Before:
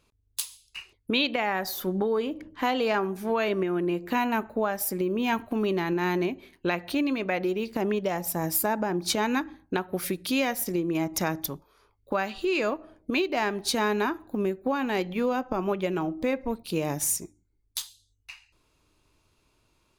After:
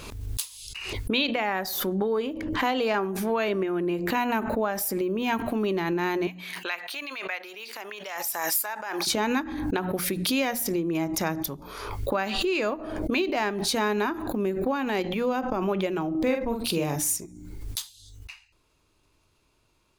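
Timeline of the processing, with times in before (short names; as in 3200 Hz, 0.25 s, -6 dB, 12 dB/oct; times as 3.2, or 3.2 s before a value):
6.27–9.07 HPF 1200 Hz
16.1–16.96 doubler 47 ms -5 dB
whole clip: notches 60/120/180/240/300 Hz; backwards sustainer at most 39 dB/s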